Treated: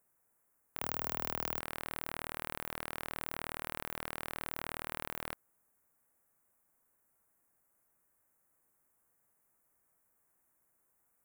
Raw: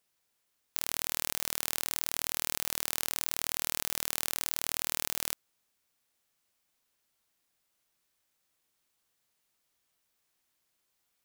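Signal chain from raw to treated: Butterworth band-stop 3900 Hz, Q 0.55; 0.79–1.6 frequency shift +14 Hz; wavefolder -24 dBFS; gain +4 dB

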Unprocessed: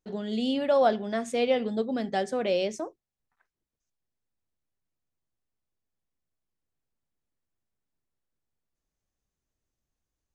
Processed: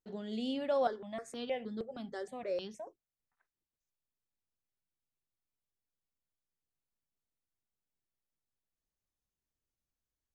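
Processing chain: 0.87–2.87 step phaser 6.4 Hz 700–2700 Hz; gain -8.5 dB

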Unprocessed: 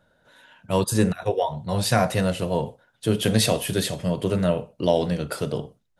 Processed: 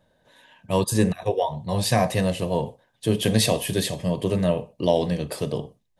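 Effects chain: Butterworth band-stop 1400 Hz, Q 4.7

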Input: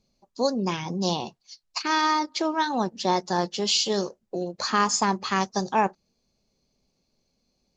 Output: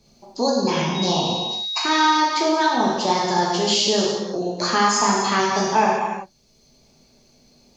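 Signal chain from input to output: 0.94–2.15 whine 3800 Hz -35 dBFS; non-linear reverb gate 0.4 s falling, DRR -5 dB; three-band squash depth 40%

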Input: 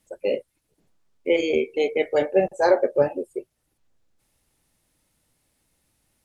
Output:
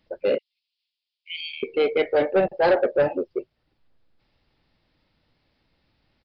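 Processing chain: 0.38–1.63 steep high-pass 2700 Hz 36 dB/oct; soft clip -16.5 dBFS, distortion -12 dB; downsampling 11025 Hz; gain +3.5 dB

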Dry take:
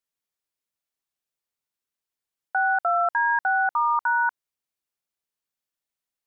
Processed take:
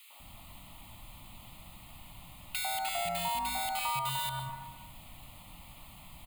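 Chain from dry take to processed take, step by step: formant sharpening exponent 1.5; sample-and-hold 3×; in parallel at -6 dB: sine folder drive 18 dB, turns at -15 dBFS; on the sum: added noise pink -48 dBFS; fixed phaser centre 1600 Hz, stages 6; three bands offset in time highs, mids, lows 0.1/0.2 s, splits 430/1600 Hz; on a send at -10 dB: reverb RT60 0.85 s, pre-delay 0.113 s; on the sum: compressor 2.5:1, threshold -35 dBFS, peak gain reduction 10 dB

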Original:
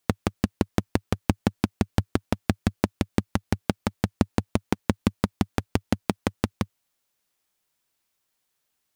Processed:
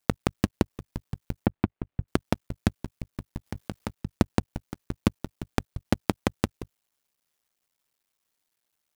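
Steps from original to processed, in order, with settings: cycle switcher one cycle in 2, muted; 1.46–2.08 air absorption 480 m; 3.46–3.91 negative-ratio compressor -31 dBFS, ratio -1

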